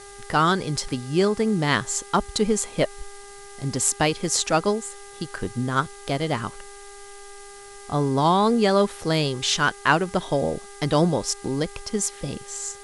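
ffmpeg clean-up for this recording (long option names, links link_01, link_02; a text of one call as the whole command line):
ffmpeg -i in.wav -af "bandreject=frequency=401.8:width_type=h:width=4,bandreject=frequency=803.6:width_type=h:width=4,bandreject=frequency=1205.4:width_type=h:width=4,bandreject=frequency=1607.2:width_type=h:width=4,bandreject=frequency=2009:width_type=h:width=4,afftdn=noise_reduction=26:noise_floor=-42" out.wav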